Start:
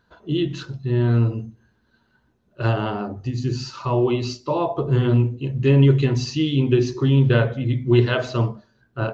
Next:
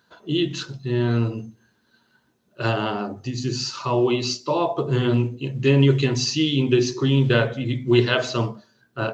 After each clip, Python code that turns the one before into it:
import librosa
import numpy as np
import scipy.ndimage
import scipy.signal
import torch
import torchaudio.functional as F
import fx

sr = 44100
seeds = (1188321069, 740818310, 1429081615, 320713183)

y = scipy.signal.sosfilt(scipy.signal.butter(2, 140.0, 'highpass', fs=sr, output='sos'), x)
y = fx.high_shelf(y, sr, hz=3200.0, db=10.5)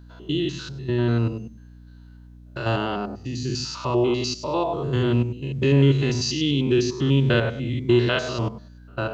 y = fx.spec_steps(x, sr, hold_ms=100)
y = fx.add_hum(y, sr, base_hz=60, snr_db=22)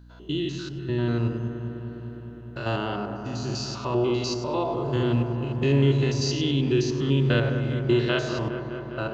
y = fx.echo_wet_lowpass(x, sr, ms=204, feedback_pct=78, hz=1700.0, wet_db=-8.5)
y = F.gain(torch.from_numpy(y), -3.5).numpy()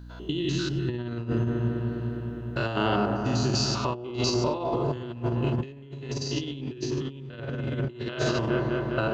y = fx.over_compress(x, sr, threshold_db=-29.0, ratio=-0.5)
y = F.gain(torch.from_numpy(y), 1.5).numpy()